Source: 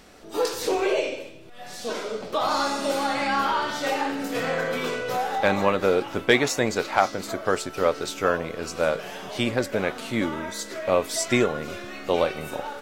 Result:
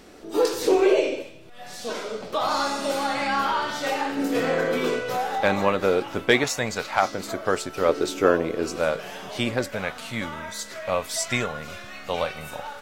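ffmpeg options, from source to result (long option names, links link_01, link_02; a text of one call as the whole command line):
ffmpeg -i in.wav -af "asetnsamples=nb_out_samples=441:pad=0,asendcmd='1.22 equalizer g -2;4.17 equalizer g 8.5;4.99 equalizer g -0.5;6.44 equalizer g -10;7.03 equalizer g 0;7.89 equalizer g 10;8.78 equalizer g -2;9.69 equalizer g -13',equalizer=frequency=340:width_type=o:width=0.98:gain=7.5" out.wav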